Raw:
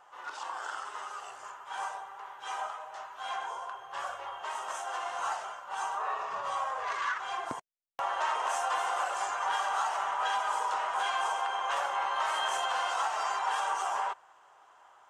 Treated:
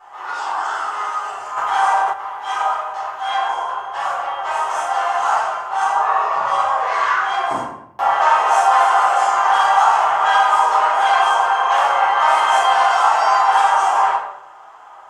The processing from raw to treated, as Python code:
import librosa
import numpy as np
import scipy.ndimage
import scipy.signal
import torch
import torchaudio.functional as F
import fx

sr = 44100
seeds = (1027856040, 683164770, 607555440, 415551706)

y = fx.peak_eq(x, sr, hz=960.0, db=6.5, octaves=1.7)
y = fx.room_shoebox(y, sr, seeds[0], volume_m3=180.0, walls='mixed', distance_m=4.0)
y = fx.env_flatten(y, sr, amount_pct=50, at=(1.56, 2.12), fade=0.02)
y = y * librosa.db_to_amplitude(-1.0)